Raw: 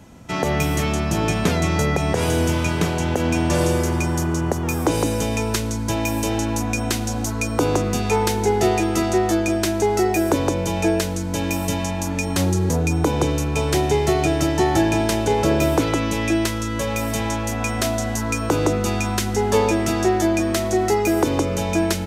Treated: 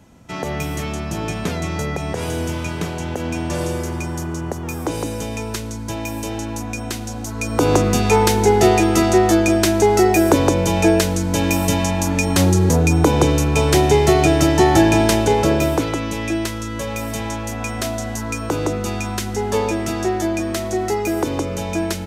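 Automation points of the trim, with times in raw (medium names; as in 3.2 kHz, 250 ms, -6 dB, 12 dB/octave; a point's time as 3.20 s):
7.26 s -4 dB
7.73 s +5 dB
15.11 s +5 dB
15.97 s -2 dB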